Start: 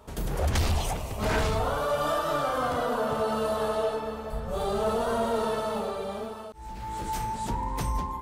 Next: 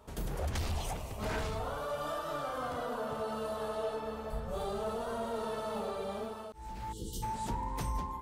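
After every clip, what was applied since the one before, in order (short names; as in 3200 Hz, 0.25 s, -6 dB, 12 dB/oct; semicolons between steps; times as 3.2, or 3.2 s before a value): spectral gain 6.92–7.23, 520–2800 Hz -28 dB; vocal rider within 4 dB 0.5 s; gain -8 dB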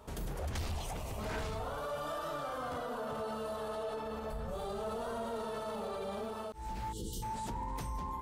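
limiter -34.5 dBFS, peak gain reduction 9 dB; gain +3 dB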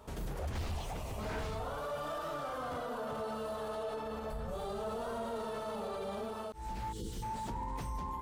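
slew limiter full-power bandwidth 19 Hz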